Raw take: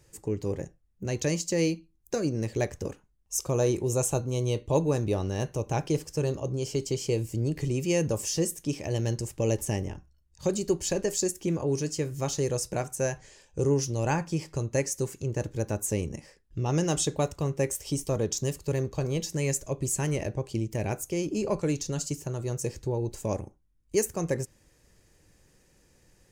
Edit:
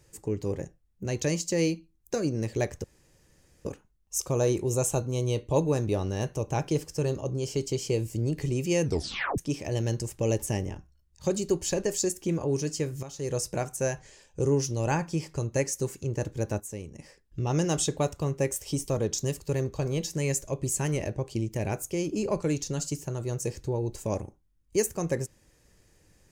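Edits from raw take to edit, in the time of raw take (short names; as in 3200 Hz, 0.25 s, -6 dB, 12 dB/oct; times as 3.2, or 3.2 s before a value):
2.84 insert room tone 0.81 s
8.03 tape stop 0.54 s
12.22–12.54 fade in quadratic, from -13.5 dB
15.79–16.18 gain -9.5 dB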